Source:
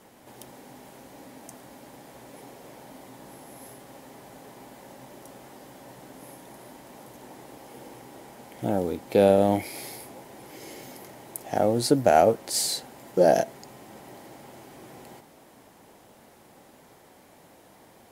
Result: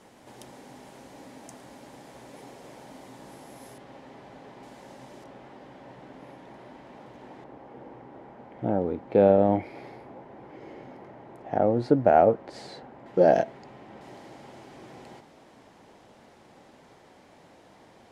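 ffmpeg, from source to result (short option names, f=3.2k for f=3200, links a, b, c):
-af "asetnsamples=n=441:p=0,asendcmd='3.78 lowpass f 3700;4.63 lowpass f 6800;5.24 lowpass f 3000;7.44 lowpass f 1600;13.06 lowpass f 2900;14.01 lowpass f 5700',lowpass=8.5k"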